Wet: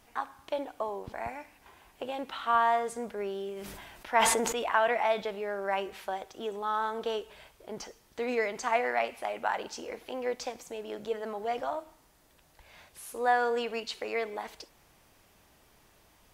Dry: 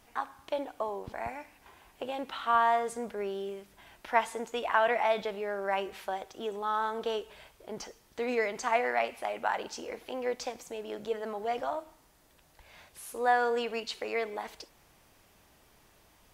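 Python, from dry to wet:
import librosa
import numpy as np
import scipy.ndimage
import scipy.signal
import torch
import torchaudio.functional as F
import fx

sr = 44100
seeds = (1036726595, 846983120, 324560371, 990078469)

y = fx.sustainer(x, sr, db_per_s=32.0, at=(3.55, 4.7), fade=0.02)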